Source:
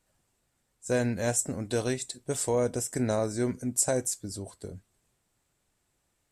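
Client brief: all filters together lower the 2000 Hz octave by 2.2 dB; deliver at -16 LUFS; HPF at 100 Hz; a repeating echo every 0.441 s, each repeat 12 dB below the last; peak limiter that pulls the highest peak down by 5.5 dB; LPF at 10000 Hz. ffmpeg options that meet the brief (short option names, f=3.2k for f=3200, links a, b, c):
-af "highpass=100,lowpass=10k,equalizer=f=2k:t=o:g=-3,alimiter=limit=-19.5dB:level=0:latency=1,aecho=1:1:441|882|1323:0.251|0.0628|0.0157,volume=16dB"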